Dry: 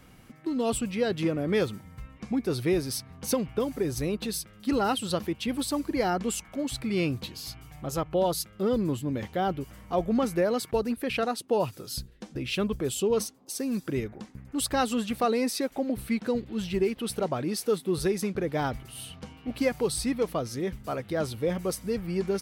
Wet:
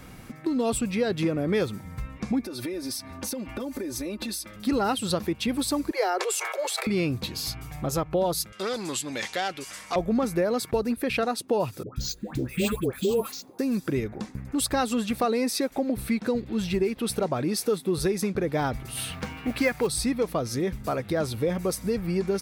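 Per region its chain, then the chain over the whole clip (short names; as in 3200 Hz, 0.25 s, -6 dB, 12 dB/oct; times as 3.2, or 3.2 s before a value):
2.43–4.56 HPF 130 Hz 6 dB/oct + comb 3.4 ms, depth 99% + compressor 10:1, threshold -37 dBFS
5.91–6.87 steep high-pass 370 Hz 96 dB/oct + sustainer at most 50 dB/s
8.52–9.96 weighting filter ITU-R 468 + core saturation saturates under 2000 Hz
11.83–13.59 LPF 11000 Hz + careless resampling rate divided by 4×, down filtered, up hold + dispersion highs, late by 0.132 s, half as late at 910 Hz
18.97–19.87 bell 1800 Hz +8.5 dB 1.5 oct + modulation noise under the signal 27 dB
whole clip: compressor 2:1, threshold -36 dBFS; notch 3000 Hz, Q 11; gain +8.5 dB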